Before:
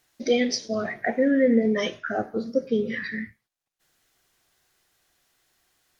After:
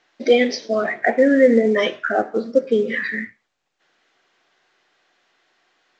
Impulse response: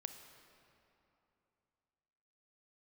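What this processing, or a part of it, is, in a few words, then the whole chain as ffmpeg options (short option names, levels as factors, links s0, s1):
telephone: -af "highpass=300,lowpass=3200,volume=2.66" -ar 16000 -c:a pcm_mulaw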